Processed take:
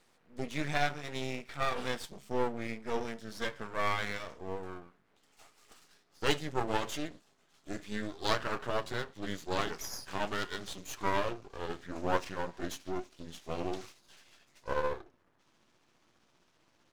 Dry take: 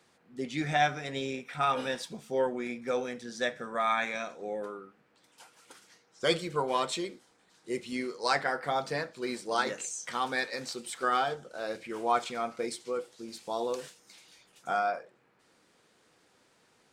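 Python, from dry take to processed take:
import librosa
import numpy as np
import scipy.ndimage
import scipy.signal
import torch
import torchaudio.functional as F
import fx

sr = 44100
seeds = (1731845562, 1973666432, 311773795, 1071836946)

y = fx.pitch_glide(x, sr, semitones=-6.5, runs='starting unshifted')
y = np.maximum(y, 0.0)
y = F.gain(torch.from_numpy(y), 1.5).numpy()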